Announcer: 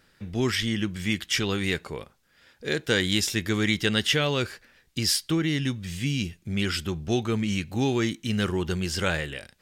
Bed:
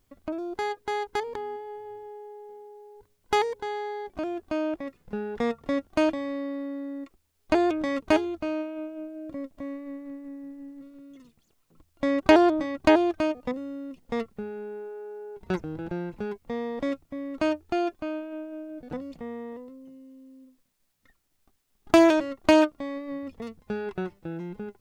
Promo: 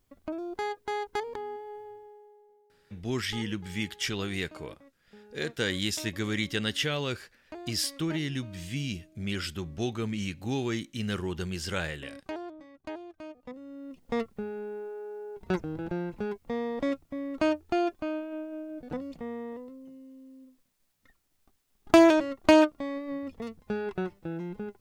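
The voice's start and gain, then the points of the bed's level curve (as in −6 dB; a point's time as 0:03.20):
2.70 s, −6.0 dB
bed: 0:01.81 −3 dB
0:02.77 −21 dB
0:13.09 −21 dB
0:14.07 −0.5 dB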